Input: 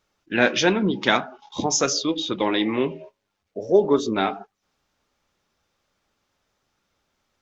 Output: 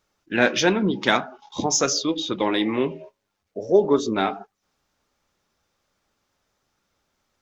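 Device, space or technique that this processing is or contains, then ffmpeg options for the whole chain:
exciter from parts: -filter_complex "[0:a]asplit=2[a][b];[b]highpass=2.3k,asoftclip=type=tanh:threshold=-18.5dB,highpass=2.7k,volume=-10.5dB[c];[a][c]amix=inputs=2:normalize=0"

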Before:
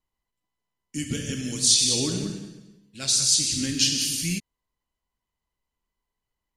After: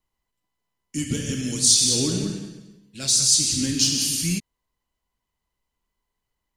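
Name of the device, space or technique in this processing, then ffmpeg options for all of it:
one-band saturation: -filter_complex "[0:a]acrossover=split=550|3900[a][b][c];[b]asoftclip=type=tanh:threshold=-39dB[d];[a][d][c]amix=inputs=3:normalize=0,volume=3.5dB"

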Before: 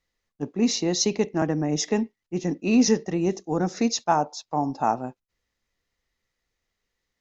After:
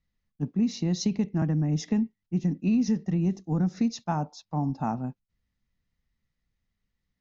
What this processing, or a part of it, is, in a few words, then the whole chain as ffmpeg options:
jukebox: -af "lowpass=5.7k,lowshelf=f=280:t=q:w=1.5:g=11.5,acompressor=threshold=-15dB:ratio=4,volume=-7dB"

